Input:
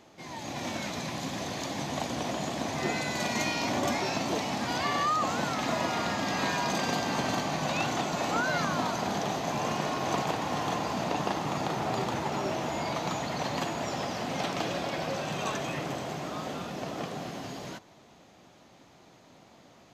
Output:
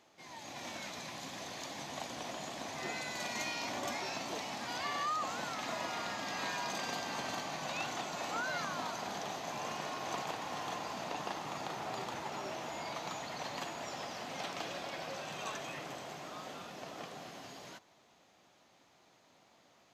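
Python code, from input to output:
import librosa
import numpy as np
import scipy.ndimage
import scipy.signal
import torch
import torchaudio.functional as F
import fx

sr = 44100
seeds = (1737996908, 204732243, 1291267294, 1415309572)

y = fx.low_shelf(x, sr, hz=430.0, db=-10.0)
y = F.gain(torch.from_numpy(y), -6.5).numpy()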